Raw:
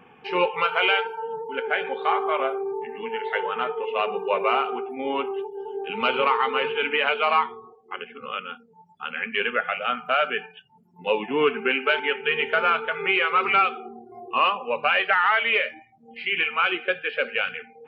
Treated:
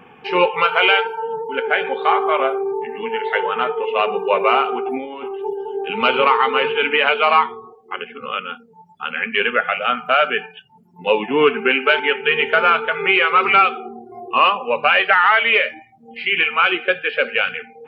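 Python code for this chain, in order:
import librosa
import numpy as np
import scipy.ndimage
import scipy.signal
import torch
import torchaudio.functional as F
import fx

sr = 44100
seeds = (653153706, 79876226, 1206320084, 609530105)

y = fx.over_compress(x, sr, threshold_db=-36.0, ratio=-1.0, at=(4.84, 5.53), fade=0.02)
y = F.gain(torch.from_numpy(y), 6.5).numpy()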